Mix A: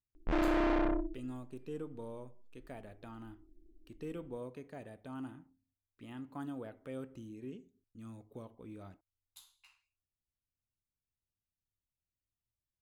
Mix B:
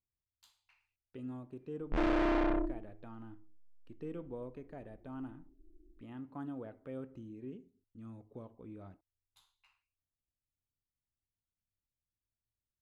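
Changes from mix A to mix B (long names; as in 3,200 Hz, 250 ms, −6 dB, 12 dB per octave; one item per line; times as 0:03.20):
speech: add low-pass filter 1,400 Hz 6 dB per octave
background: entry +1.65 s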